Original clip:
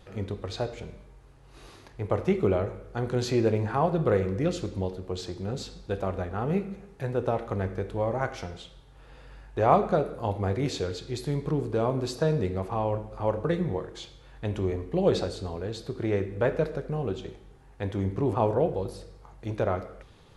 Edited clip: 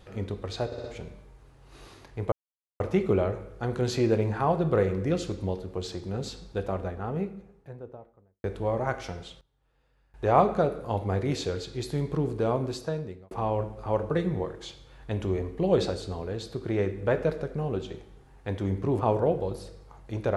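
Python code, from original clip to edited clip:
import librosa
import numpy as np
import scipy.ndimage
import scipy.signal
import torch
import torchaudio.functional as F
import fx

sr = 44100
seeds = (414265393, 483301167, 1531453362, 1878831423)

y = fx.studio_fade_out(x, sr, start_s=5.73, length_s=2.05)
y = fx.edit(y, sr, fx.stutter(start_s=0.66, slice_s=0.06, count=4),
    fx.insert_silence(at_s=2.14, length_s=0.48),
    fx.fade_down_up(start_s=8.6, length_s=1.03, db=-20.0, fade_s=0.15, curve='log'),
    fx.fade_out_span(start_s=11.86, length_s=0.79), tone=tone)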